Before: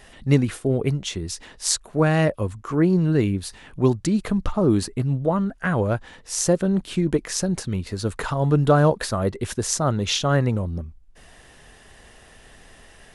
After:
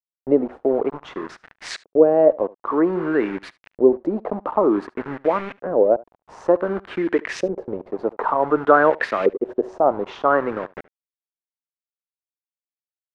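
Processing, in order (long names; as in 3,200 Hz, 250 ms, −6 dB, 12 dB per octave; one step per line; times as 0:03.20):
high-pass filter 290 Hz 24 dB per octave
hum removal 374 Hz, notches 11
in parallel at −1.5 dB: downward compressor 5 to 1, threshold −32 dBFS, peak gain reduction 17.5 dB
on the sum: centre clipping without the shift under −31 dBFS
auto-filter low-pass saw up 0.54 Hz 440–2,500 Hz
on a send: single-tap delay 73 ms −22.5 dB
on the sum: level +1 dB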